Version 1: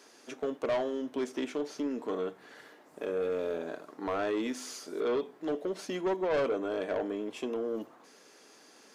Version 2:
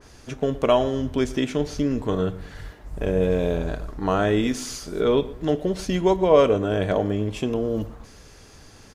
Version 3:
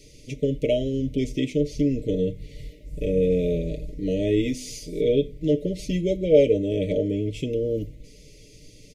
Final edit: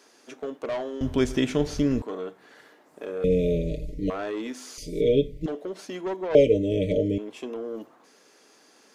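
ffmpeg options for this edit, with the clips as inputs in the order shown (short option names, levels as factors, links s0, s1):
-filter_complex "[2:a]asplit=3[s0][s1][s2];[0:a]asplit=5[s3][s4][s5][s6][s7];[s3]atrim=end=1.012[s8];[1:a]atrim=start=1.008:end=2.022[s9];[s4]atrim=start=2.018:end=3.242[s10];[s0]atrim=start=3.238:end=4.102[s11];[s5]atrim=start=4.098:end=4.782[s12];[s1]atrim=start=4.778:end=5.462[s13];[s6]atrim=start=5.458:end=6.352[s14];[s2]atrim=start=6.348:end=7.182[s15];[s7]atrim=start=7.178[s16];[s8][s9]acrossfade=d=0.004:c1=hsin:c2=hsin[s17];[s17][s10]acrossfade=d=0.004:c1=hsin:c2=hsin[s18];[s18][s11]acrossfade=d=0.004:c1=hsin:c2=hsin[s19];[s19][s12]acrossfade=d=0.004:c1=hsin:c2=hsin[s20];[s20][s13]acrossfade=d=0.004:c1=hsin:c2=hsin[s21];[s21][s14]acrossfade=d=0.004:c1=hsin:c2=hsin[s22];[s22][s15]acrossfade=d=0.004:c1=hsin:c2=hsin[s23];[s23][s16]acrossfade=d=0.004:c1=hsin:c2=hsin"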